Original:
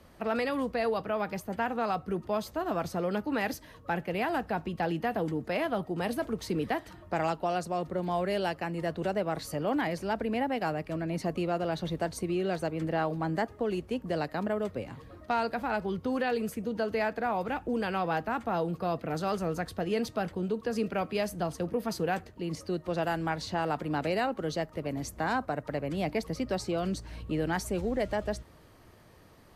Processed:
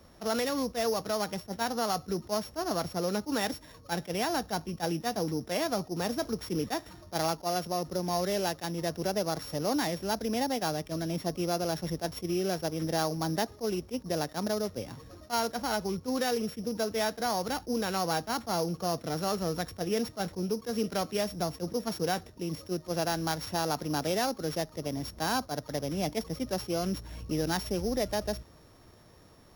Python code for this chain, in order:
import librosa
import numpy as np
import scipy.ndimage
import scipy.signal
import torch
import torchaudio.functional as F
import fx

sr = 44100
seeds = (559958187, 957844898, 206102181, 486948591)

y = np.r_[np.sort(x[:len(x) // 8 * 8].reshape(-1, 8), axis=1).ravel(), x[len(x) // 8 * 8:]]
y = fx.attack_slew(y, sr, db_per_s=420.0)